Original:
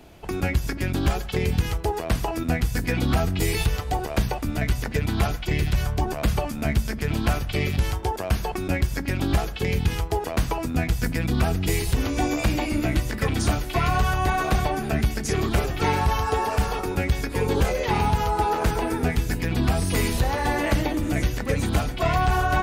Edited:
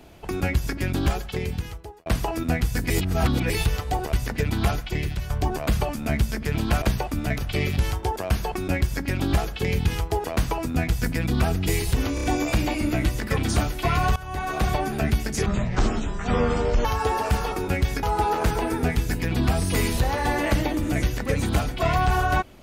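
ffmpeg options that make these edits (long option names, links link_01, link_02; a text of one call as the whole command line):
ffmpeg -i in.wav -filter_complex "[0:a]asplit=15[link_01][link_02][link_03][link_04][link_05][link_06][link_07][link_08][link_09][link_10][link_11][link_12][link_13][link_14][link_15];[link_01]atrim=end=2.06,asetpts=PTS-STARTPTS,afade=type=out:start_time=1.02:duration=1.04[link_16];[link_02]atrim=start=2.06:end=2.902,asetpts=PTS-STARTPTS,afade=type=in:duration=0.004:curve=hsin[link_17];[link_03]atrim=start=2.898:end=3.502,asetpts=PTS-STARTPTS,areverse[link_18];[link_04]atrim=start=3.498:end=4.132[link_19];[link_05]atrim=start=4.688:end=5.86,asetpts=PTS-STARTPTS,afade=type=out:start_time=0.622:duration=0.55:silence=0.334965[link_20];[link_06]atrim=start=5.86:end=7.382,asetpts=PTS-STARTPTS,afade=type=in:duration=0.004:curve=hsin:silence=0.334965[link_21];[link_07]atrim=start=4.128:end=4.692[link_22];[link_08]atrim=start=7.378:end=12.182[link_23];[link_09]atrim=start=12.148:end=12.182[link_24];[link_10]atrim=start=12.148:end=12.182[link_25];[link_11]atrim=start=12.148:end=14.07,asetpts=PTS-STARTPTS,afade=type=out:start_time=1.918:duration=0.004:curve=hsin:silence=0.112202[link_26];[link_12]atrim=start=14.07:end=15.374,asetpts=PTS-STARTPTS,afade=type=in:duration=0.57:silence=0.112202[link_27];[link_13]atrim=start=15.37:end=16.12,asetpts=PTS-STARTPTS,asetrate=23814,aresample=44100[link_28];[link_14]atrim=start=16.116:end=17.302[link_29];[link_15]atrim=start=18.228[link_30];[link_16][link_17]concat=n=2:v=0:a=1[link_31];[link_31][link_18]acrossfade=duration=0.004:curve1=hsin:curve2=hsin[link_32];[link_32][link_19]acrossfade=duration=0.004:curve1=hsin:curve2=hsin[link_33];[link_20][link_21]concat=n=2:v=0:a=1[link_34];[link_33][link_34]acrossfade=duration=0.004:curve1=hsin:curve2=hsin[link_35];[link_35][link_22]acrossfade=duration=0.004:curve1=hsin:curve2=hsin[link_36];[link_36][link_23]acrossfade=duration=0.004:curve1=hsin:curve2=hsin[link_37];[link_37][link_24]acrossfade=duration=0.004:curve1=hsin:curve2=hsin[link_38];[link_38][link_25]acrossfade=duration=0.004:curve1=hsin:curve2=hsin[link_39];[link_26][link_27]concat=n=2:v=0:a=1[link_40];[link_39][link_40]acrossfade=duration=0.004:curve1=hsin:curve2=hsin[link_41];[link_41][link_28]acrossfade=duration=0.004:curve1=hsin:curve2=hsin[link_42];[link_42][link_29]acrossfade=duration=0.004:curve1=hsin:curve2=hsin[link_43];[link_43][link_30]acrossfade=duration=0.004:curve1=hsin:curve2=hsin" out.wav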